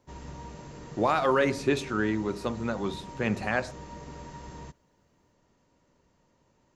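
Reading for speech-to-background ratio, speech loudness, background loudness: 15.5 dB, -28.5 LUFS, -44.0 LUFS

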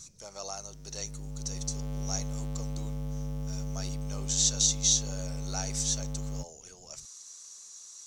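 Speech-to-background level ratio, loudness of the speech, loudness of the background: 7.0 dB, -30.5 LUFS, -37.5 LUFS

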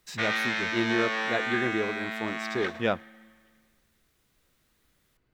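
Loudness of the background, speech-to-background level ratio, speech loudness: -29.5 LUFS, -2.0 dB, -31.5 LUFS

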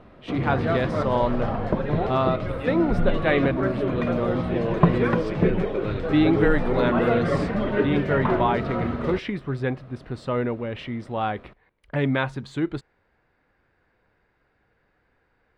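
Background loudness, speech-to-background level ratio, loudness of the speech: -25.5 LUFS, -1.0 dB, -26.5 LUFS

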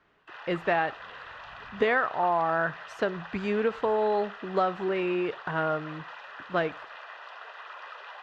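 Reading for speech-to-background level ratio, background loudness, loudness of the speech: 14.5 dB, -43.0 LUFS, -28.5 LUFS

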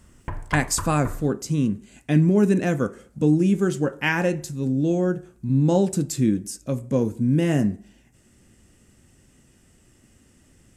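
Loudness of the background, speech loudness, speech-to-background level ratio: -36.0 LUFS, -22.5 LUFS, 13.5 dB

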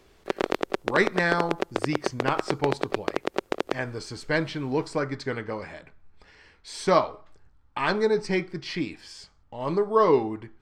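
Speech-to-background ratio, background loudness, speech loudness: 3.5 dB, -30.5 LUFS, -27.0 LUFS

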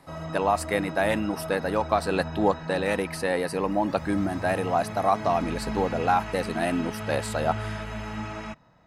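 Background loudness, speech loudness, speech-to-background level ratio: -35.5 LUFS, -27.0 LUFS, 8.5 dB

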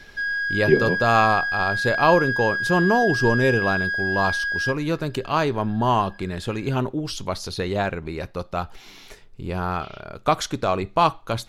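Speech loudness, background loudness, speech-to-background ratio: -23.0 LUFS, -23.5 LUFS, 0.5 dB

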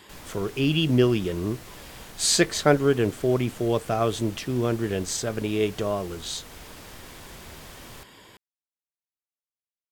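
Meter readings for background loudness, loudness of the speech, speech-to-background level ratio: -44.0 LUFS, -24.5 LUFS, 19.5 dB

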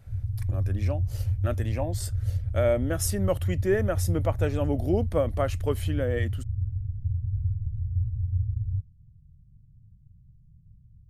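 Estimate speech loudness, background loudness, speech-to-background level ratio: -29.5 LUFS, -30.0 LUFS, 0.5 dB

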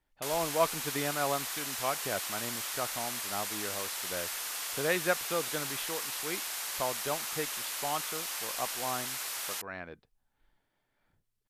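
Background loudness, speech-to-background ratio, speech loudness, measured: -34.5 LUFS, -2.0 dB, -36.5 LUFS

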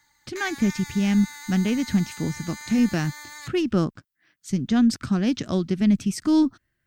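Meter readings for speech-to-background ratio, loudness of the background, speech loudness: 14.5 dB, -38.5 LUFS, -24.0 LUFS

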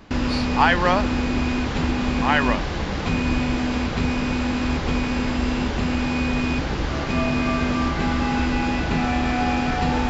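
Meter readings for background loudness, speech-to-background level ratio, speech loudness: -23.0 LUFS, 1.0 dB, -22.0 LUFS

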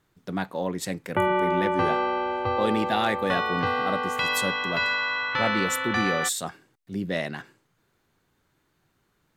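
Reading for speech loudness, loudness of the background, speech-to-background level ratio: -30.0 LUFS, -26.0 LUFS, -4.0 dB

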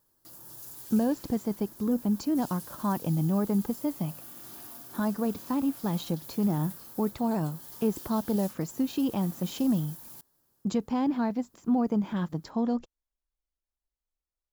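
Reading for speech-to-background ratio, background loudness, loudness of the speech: 13.5 dB, -43.5 LUFS, -30.0 LUFS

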